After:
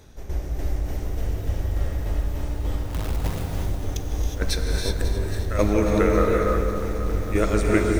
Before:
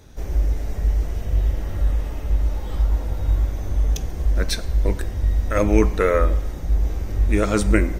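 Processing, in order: notches 50/100/150/200/250/300 Hz; 2.9–3.42 companded quantiser 2-bit; tremolo saw down 3.4 Hz, depth 70%; darkening echo 0.155 s, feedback 63%, low-pass 810 Hz, level -5.5 dB; non-linear reverb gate 0.39 s rising, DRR 1.5 dB; lo-fi delay 0.272 s, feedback 80%, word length 7-bit, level -12 dB

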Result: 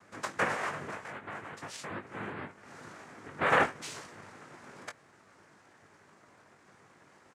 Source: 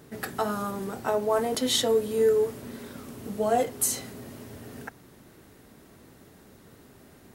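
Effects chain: three-band isolator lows -24 dB, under 410 Hz, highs -14 dB, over 2000 Hz; 1.02–3.41 compressor 5:1, threshold -42 dBFS, peak gain reduction 18 dB; noise vocoder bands 3; doubler 20 ms -7 dB

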